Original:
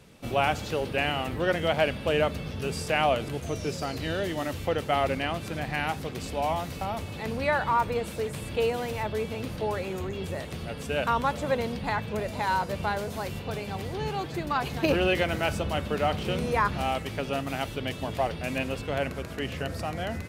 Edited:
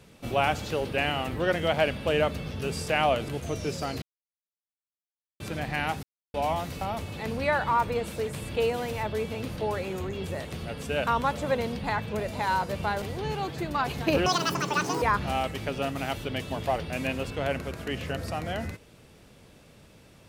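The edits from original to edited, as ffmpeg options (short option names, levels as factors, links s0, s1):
-filter_complex "[0:a]asplit=8[s0][s1][s2][s3][s4][s5][s6][s7];[s0]atrim=end=4.02,asetpts=PTS-STARTPTS,afade=t=out:st=4.016:d=0.004:c=hsin[s8];[s1]atrim=start=4.02:end=5.4,asetpts=PTS-STARTPTS,volume=0[s9];[s2]atrim=start=5.4:end=6.03,asetpts=PTS-STARTPTS,afade=t=in:d=0.004:c=hsin,afade=t=out:st=0.626:d=0.004:c=hsin[s10];[s3]atrim=start=6.03:end=6.34,asetpts=PTS-STARTPTS,volume=0[s11];[s4]atrim=start=6.34:end=13.022,asetpts=PTS-STARTPTS,afade=t=in:d=0.004:c=hsin[s12];[s5]atrim=start=13.778:end=15.024[s13];[s6]atrim=start=15.02:end=16.53,asetpts=PTS-STARTPTS,asetrate=87759,aresample=44100[s14];[s7]atrim=start=16.526[s15];[s8][s9][s10][s11][s12]concat=n=5:v=0:a=1[s16];[s16][s13]acrossfade=d=0.004:c1=hsin:c2=hsin[s17];[s17][s14]acrossfade=d=0.004:c1=hsin:c2=hsin[s18];[s18][s15]acrossfade=d=0.004:c1=hsin:c2=hsin"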